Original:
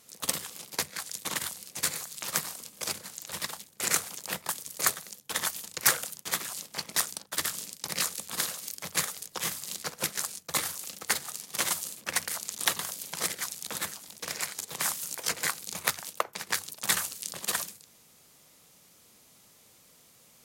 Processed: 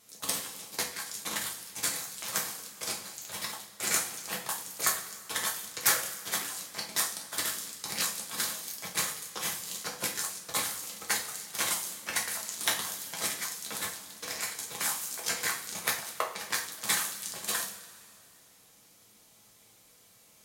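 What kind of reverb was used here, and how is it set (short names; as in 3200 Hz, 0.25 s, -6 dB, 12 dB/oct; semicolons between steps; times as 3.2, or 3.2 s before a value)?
two-slope reverb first 0.35 s, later 2.4 s, from -18 dB, DRR -1.5 dB; gain -4.5 dB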